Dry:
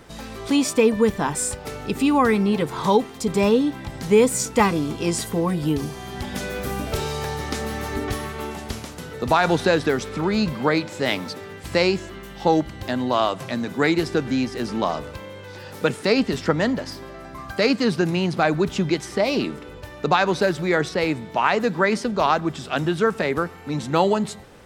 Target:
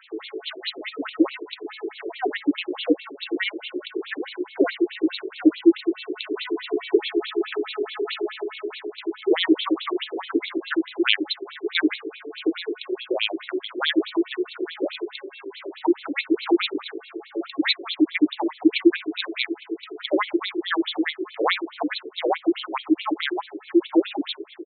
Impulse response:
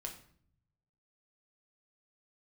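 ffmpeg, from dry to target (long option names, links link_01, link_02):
-filter_complex "[0:a]lowshelf=frequency=230:width_type=q:width=3:gain=9.5,asplit=2[link_01][link_02];[link_02]adelay=802,lowpass=frequency=4400:poles=1,volume=-14dB,asplit=2[link_03][link_04];[link_04]adelay=802,lowpass=frequency=4400:poles=1,volume=0.28,asplit=2[link_05][link_06];[link_06]adelay=802,lowpass=frequency=4400:poles=1,volume=0.28[link_07];[link_03][link_05][link_07]amix=inputs=3:normalize=0[link_08];[link_01][link_08]amix=inputs=2:normalize=0,afreqshift=-490,crystalizer=i=8:c=0,afftfilt=real='re*between(b*sr/1024,400*pow(3100/400,0.5+0.5*sin(2*PI*4.7*pts/sr))/1.41,400*pow(3100/400,0.5+0.5*sin(2*PI*4.7*pts/sr))*1.41)':imag='im*between(b*sr/1024,400*pow(3100/400,0.5+0.5*sin(2*PI*4.7*pts/sr))/1.41,400*pow(3100/400,0.5+0.5*sin(2*PI*4.7*pts/sr))*1.41)':win_size=1024:overlap=0.75,volume=-1dB"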